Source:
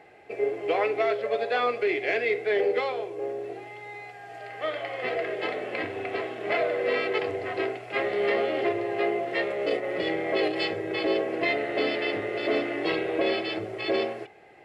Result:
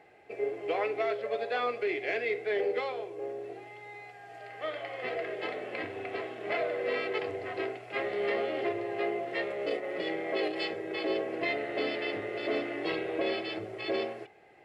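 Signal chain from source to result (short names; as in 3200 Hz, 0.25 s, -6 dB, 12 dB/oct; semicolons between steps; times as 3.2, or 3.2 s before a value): 9.72–11.1 HPF 160 Hz 12 dB/oct; gain -5.5 dB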